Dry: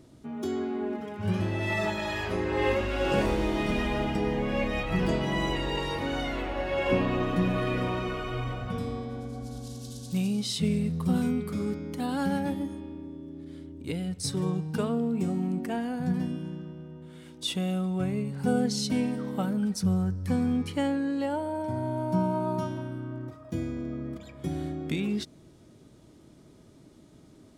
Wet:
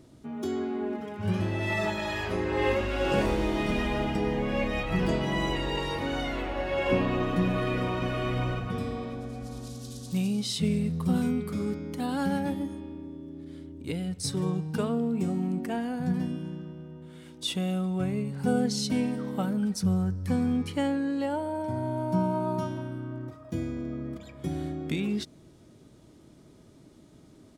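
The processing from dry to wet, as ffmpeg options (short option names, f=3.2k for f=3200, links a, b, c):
-filter_complex "[0:a]asplit=2[a][b];[b]afade=t=in:st=7.46:d=0.01,afade=t=out:st=8.04:d=0.01,aecho=0:1:550|1100|1650|2200:0.595662|0.208482|0.0729686|0.025539[c];[a][c]amix=inputs=2:normalize=0"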